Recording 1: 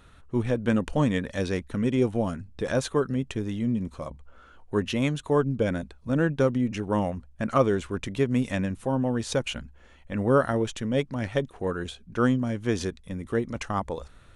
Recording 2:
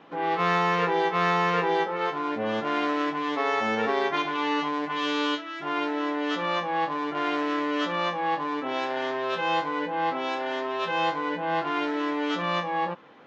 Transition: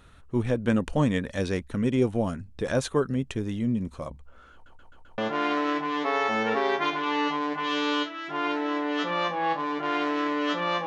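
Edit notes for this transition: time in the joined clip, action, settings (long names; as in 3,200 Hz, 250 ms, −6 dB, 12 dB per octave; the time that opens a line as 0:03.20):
recording 1
0:04.53: stutter in place 0.13 s, 5 plays
0:05.18: continue with recording 2 from 0:02.50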